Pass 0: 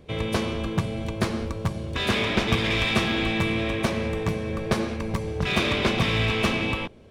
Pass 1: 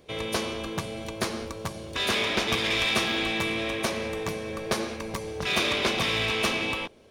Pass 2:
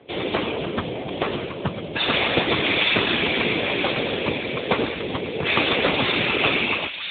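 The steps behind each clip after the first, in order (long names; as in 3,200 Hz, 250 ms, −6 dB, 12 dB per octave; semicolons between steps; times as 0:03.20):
bass and treble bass −10 dB, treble +7 dB; notch filter 7,700 Hz, Q 12; level −1.5 dB
random phases in short frames; delay with a high-pass on its return 996 ms, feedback 45%, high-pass 1,900 Hz, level −6 dB; level +8 dB; AMR narrowband 7.95 kbit/s 8,000 Hz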